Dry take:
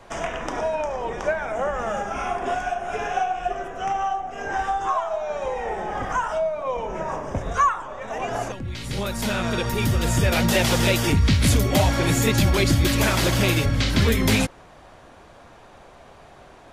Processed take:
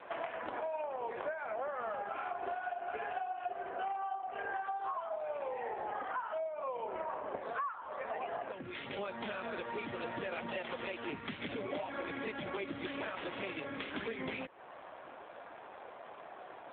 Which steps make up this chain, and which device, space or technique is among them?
voicemail (BPF 370–3100 Hz; compressor 8:1, threshold -36 dBFS, peak gain reduction 19.5 dB; gain +1 dB; AMR-NB 7.4 kbps 8000 Hz)

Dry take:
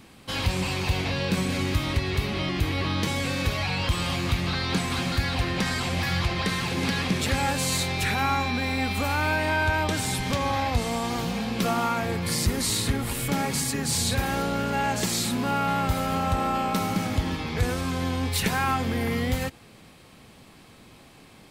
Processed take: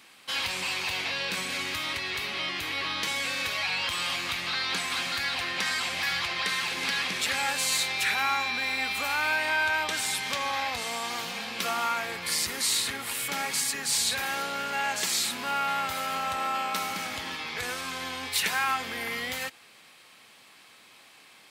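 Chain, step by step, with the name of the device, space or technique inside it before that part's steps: filter by subtraction (in parallel: LPF 2000 Hz 12 dB/oct + phase invert)

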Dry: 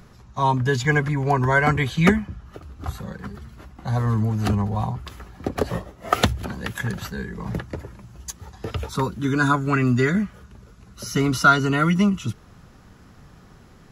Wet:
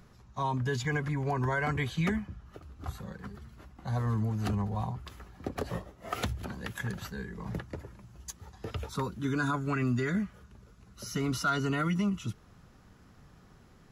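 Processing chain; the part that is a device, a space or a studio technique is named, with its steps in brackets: clipper into limiter (hard clip -7 dBFS, distortion -26 dB; limiter -13 dBFS, peak gain reduction 6 dB); gain -8.5 dB

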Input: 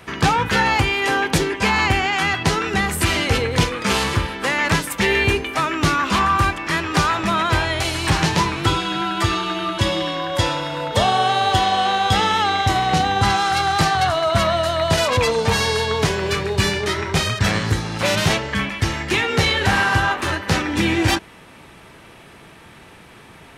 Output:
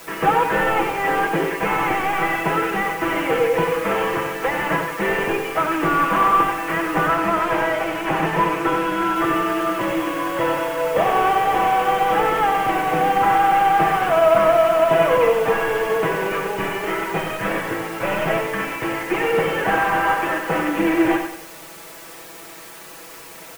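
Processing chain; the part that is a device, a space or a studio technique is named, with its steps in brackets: army field radio (BPF 310–2900 Hz; CVSD 16 kbps; white noise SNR 20 dB); bell 480 Hz +3.5 dB 1.2 oct; comb 6.1 ms; 7.07–9.16 high shelf 9900 Hz -5.5 dB; feedback echo 93 ms, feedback 37%, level -7 dB

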